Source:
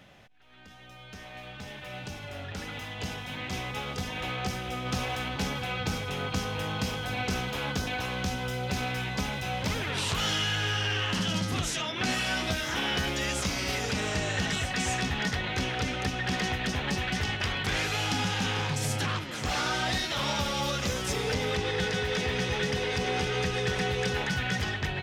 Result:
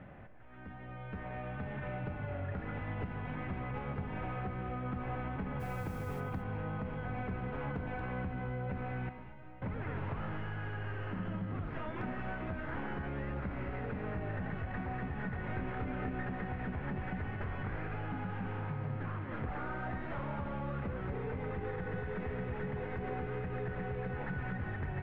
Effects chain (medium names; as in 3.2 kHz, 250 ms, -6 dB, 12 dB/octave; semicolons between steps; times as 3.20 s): tracing distortion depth 0.38 ms; low-pass 1.9 kHz 24 dB/octave; bass shelf 300 Hz +6 dB; in parallel at +1 dB: peak limiter -20.5 dBFS, peak gain reduction 7.5 dB; on the sum: compression 6:1, threshold -31 dBFS, peak gain reduction 14 dB; 5.59–6.19 s: added noise white -58 dBFS; 9.09–9.62 s: feedback comb 310 Hz, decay 0.24 s, harmonics all, mix 90%; hard clipper -23 dBFS, distortion -50 dB; 15.46–16.28 s: doubling 27 ms -5 dB; gated-style reverb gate 250 ms rising, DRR 8.5 dB; trim -5 dB